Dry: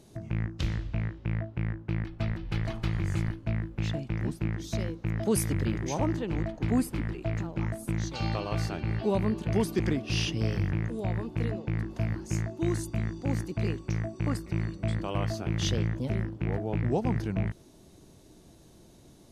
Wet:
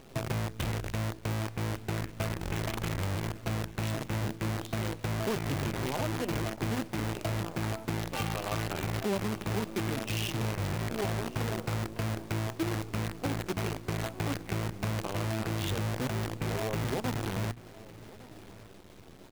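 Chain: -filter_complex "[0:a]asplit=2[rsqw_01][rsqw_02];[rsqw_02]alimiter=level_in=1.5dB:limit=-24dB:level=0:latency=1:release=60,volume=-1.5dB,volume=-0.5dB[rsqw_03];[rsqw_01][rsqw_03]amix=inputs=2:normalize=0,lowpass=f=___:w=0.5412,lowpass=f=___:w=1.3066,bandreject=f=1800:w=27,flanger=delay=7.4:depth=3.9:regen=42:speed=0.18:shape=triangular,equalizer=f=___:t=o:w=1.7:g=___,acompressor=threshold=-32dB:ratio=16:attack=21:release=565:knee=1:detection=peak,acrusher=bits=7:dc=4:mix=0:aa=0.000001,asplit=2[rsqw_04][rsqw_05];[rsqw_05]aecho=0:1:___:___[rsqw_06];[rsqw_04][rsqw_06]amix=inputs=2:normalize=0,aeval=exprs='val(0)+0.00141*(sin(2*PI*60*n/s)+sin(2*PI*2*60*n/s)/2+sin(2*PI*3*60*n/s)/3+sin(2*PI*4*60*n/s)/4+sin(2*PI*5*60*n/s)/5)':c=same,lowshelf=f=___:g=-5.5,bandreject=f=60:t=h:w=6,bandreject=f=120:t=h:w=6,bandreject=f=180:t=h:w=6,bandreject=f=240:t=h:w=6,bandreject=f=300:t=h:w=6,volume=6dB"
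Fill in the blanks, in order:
3100, 3100, 74, 3.5, 1158, 0.106, 160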